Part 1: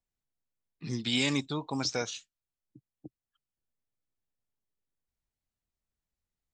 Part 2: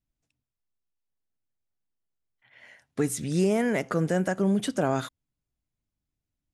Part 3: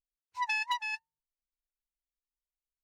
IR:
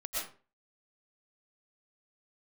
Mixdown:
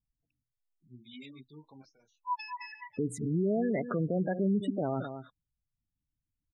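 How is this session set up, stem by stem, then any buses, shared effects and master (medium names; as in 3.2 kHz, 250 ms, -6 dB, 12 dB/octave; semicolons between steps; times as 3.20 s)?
-15.0 dB, 0.00 s, no send, no echo send, random-step tremolo 2.2 Hz, depth 80%; detune thickener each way 29 cents
-1.5 dB, 0.00 s, no send, echo send -13.5 dB, treble shelf 2.4 kHz -9 dB
-8.5 dB, 1.90 s, no send, echo send -10 dB, step-sequenced low-pass 6.6 Hz 680–7900 Hz; auto duck -11 dB, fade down 0.25 s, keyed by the second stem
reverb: none
echo: delay 216 ms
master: spectral gate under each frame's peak -15 dB strong; peak limiter -22 dBFS, peak gain reduction 5.5 dB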